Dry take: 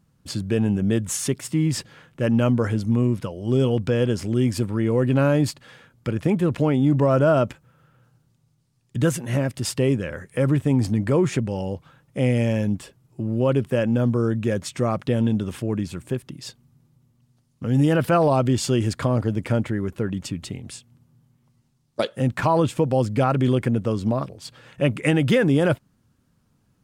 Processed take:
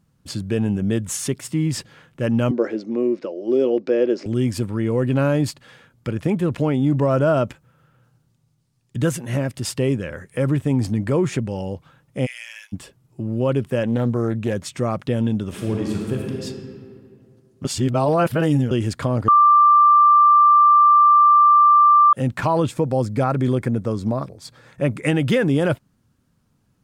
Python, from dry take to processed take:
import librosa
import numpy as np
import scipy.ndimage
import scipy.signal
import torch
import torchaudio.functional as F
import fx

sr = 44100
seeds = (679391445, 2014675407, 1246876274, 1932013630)

y = fx.cabinet(x, sr, low_hz=260.0, low_slope=24, high_hz=5300.0, hz=(350.0, 570.0, 970.0, 1400.0, 3200.0), db=(9, 7, -6, -4, -9), at=(2.51, 4.26))
y = fx.cheby2_highpass(y, sr, hz=260.0, order=4, stop_db=80, at=(12.25, 12.72), fade=0.02)
y = fx.doppler_dist(y, sr, depth_ms=0.25, at=(13.83, 14.53))
y = fx.reverb_throw(y, sr, start_s=15.47, length_s=0.96, rt60_s=2.3, drr_db=-1.5)
y = fx.peak_eq(y, sr, hz=2900.0, db=-11.0, octaves=0.31, at=(22.71, 25.06))
y = fx.edit(y, sr, fx.reverse_span(start_s=17.65, length_s=1.06),
    fx.bleep(start_s=19.28, length_s=2.85, hz=1180.0, db=-9.0), tone=tone)